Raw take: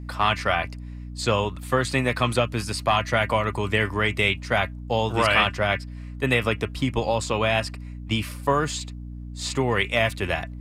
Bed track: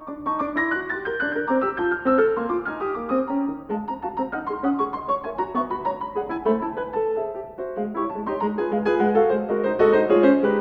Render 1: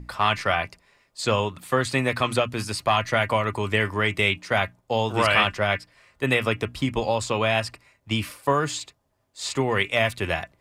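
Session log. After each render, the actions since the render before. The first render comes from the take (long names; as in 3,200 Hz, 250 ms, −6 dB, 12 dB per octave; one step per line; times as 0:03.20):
mains-hum notches 60/120/180/240/300 Hz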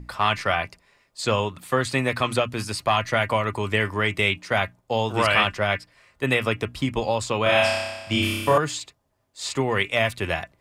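0:07.43–0:08.58: flutter between parallel walls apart 5.2 metres, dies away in 1.2 s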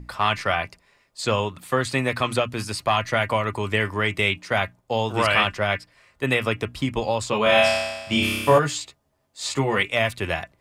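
0:07.31–0:09.83: double-tracking delay 14 ms −3 dB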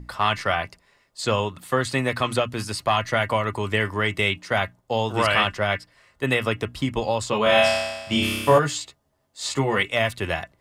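notch filter 2,400 Hz, Q 16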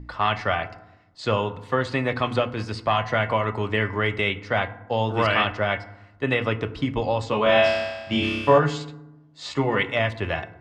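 high-frequency loss of the air 160 metres
feedback delay network reverb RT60 0.91 s, low-frequency decay 1.55×, high-frequency decay 0.45×, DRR 11.5 dB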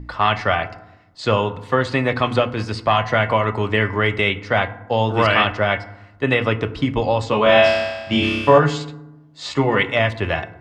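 level +5 dB
brickwall limiter −2 dBFS, peak gain reduction 1.5 dB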